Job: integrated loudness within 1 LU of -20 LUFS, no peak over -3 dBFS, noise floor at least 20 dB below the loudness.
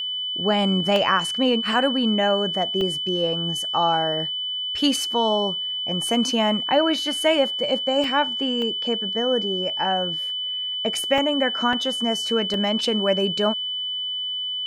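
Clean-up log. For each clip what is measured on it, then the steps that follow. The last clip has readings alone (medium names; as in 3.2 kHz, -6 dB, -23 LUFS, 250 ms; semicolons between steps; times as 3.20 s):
dropouts 7; longest dropout 1.6 ms; steady tone 3 kHz; tone level -25 dBFS; loudness -21.5 LUFS; peak level -7.0 dBFS; loudness target -20.0 LUFS
-> interpolate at 0.96/2.81/8.04/8.62/11.18/11.73/12.54 s, 1.6 ms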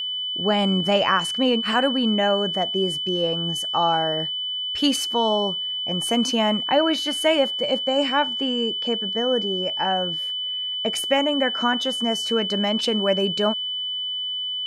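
dropouts 0; steady tone 3 kHz; tone level -25 dBFS
-> band-stop 3 kHz, Q 30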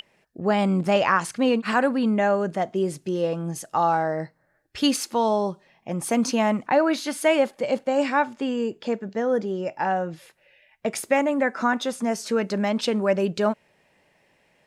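steady tone not found; loudness -24.0 LUFS; peak level -7.5 dBFS; loudness target -20.0 LUFS
-> trim +4 dB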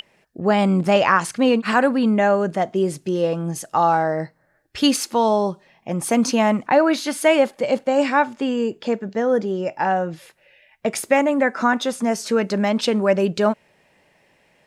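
loudness -20.0 LUFS; peak level -3.5 dBFS; noise floor -61 dBFS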